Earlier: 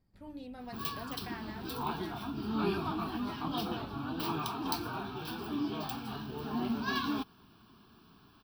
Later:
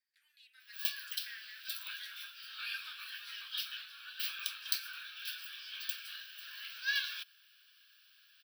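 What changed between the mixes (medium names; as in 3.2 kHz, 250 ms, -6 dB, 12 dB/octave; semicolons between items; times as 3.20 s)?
background +4.5 dB; master: add Chebyshev high-pass 1.6 kHz, order 5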